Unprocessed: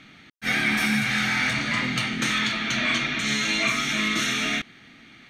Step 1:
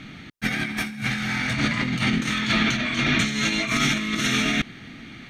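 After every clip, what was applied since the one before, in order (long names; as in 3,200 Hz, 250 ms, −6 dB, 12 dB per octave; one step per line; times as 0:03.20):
low-shelf EQ 290 Hz +9.5 dB
compressor whose output falls as the input rises −25 dBFS, ratio −0.5
level +2 dB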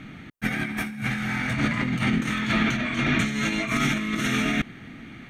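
parametric band 4,600 Hz −10 dB 1.3 octaves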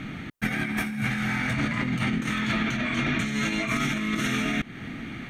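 downward compressor 4 to 1, threshold −30 dBFS, peak gain reduction 10 dB
level +5.5 dB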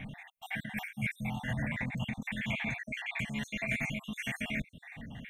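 time-frequency cells dropped at random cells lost 55%
phaser with its sweep stopped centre 1,300 Hz, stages 6
level −3 dB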